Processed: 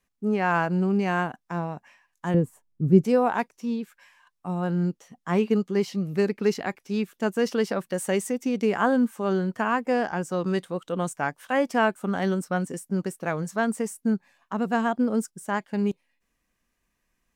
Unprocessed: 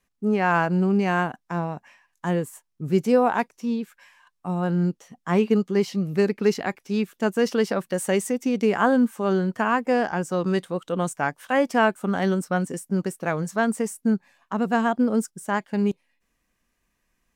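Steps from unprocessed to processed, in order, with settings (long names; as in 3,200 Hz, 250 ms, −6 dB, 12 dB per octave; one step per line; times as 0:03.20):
0:02.34–0:03.05: tilt shelving filter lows +10 dB, about 680 Hz
level −2.5 dB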